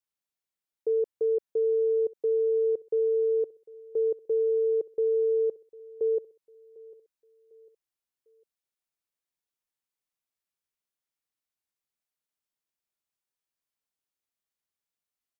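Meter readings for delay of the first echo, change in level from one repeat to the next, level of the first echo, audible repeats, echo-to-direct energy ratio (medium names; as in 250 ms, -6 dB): 750 ms, -8.0 dB, -22.0 dB, 2, -21.5 dB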